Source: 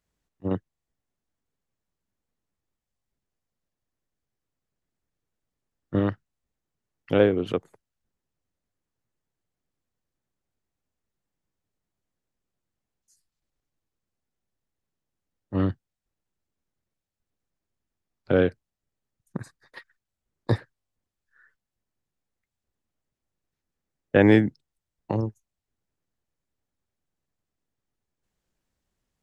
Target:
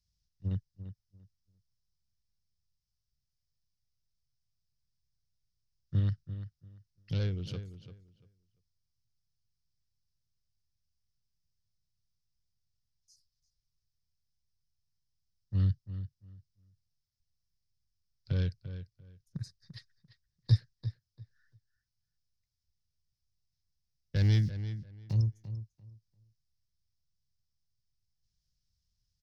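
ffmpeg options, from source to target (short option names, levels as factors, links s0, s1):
-filter_complex "[0:a]asoftclip=type=tanh:threshold=0.266,equalizer=f=1100:t=o:w=1.8:g=-5,asplit=3[s0][s1][s2];[s0]afade=t=out:st=24.15:d=0.02[s3];[s1]aeval=exprs='val(0)*gte(abs(val(0)),0.0075)':c=same,afade=t=in:st=24.15:d=0.02,afade=t=out:st=25.12:d=0.02[s4];[s2]afade=t=in:st=25.12:d=0.02[s5];[s3][s4][s5]amix=inputs=3:normalize=0,firequalizer=gain_entry='entry(120,0);entry(260,-22);entry(810,-24);entry(1500,-15);entry(2300,-14);entry(5200,7);entry(7400,-11)':delay=0.05:min_phase=1,asplit=2[s6][s7];[s7]adelay=343,lowpass=f=3500:p=1,volume=0.266,asplit=2[s8][s9];[s9]adelay=343,lowpass=f=3500:p=1,volume=0.2,asplit=2[s10][s11];[s11]adelay=343,lowpass=f=3500:p=1,volume=0.2[s12];[s8][s10][s12]amix=inputs=3:normalize=0[s13];[s6][s13]amix=inputs=2:normalize=0,volume=1.33"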